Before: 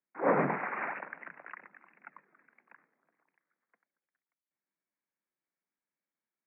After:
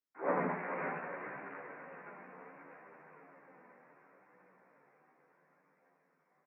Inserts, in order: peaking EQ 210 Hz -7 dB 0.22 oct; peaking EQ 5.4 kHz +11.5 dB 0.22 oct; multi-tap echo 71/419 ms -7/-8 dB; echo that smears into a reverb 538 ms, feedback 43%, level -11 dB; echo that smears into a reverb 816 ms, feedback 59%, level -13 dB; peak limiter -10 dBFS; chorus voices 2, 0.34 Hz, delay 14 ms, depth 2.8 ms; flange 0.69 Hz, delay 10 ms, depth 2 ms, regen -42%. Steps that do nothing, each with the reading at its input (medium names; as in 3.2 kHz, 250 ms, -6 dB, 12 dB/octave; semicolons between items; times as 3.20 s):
peaking EQ 5.4 kHz: input has nothing above 2.9 kHz; peak limiter -10 dBFS: peak at its input -15.5 dBFS